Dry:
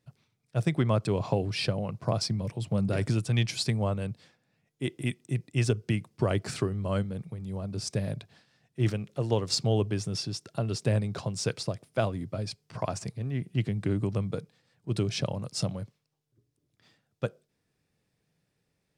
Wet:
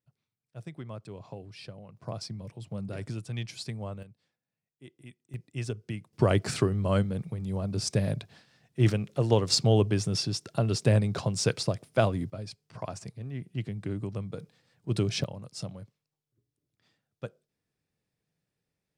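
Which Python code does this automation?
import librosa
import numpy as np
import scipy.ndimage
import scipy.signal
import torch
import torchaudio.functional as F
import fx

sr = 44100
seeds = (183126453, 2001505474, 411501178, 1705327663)

y = fx.gain(x, sr, db=fx.steps((0.0, -15.5), (1.97, -9.0), (4.03, -18.5), (5.34, -8.0), (6.13, 3.5), (12.3, -5.5), (14.4, 1.0), (15.24, -7.5)))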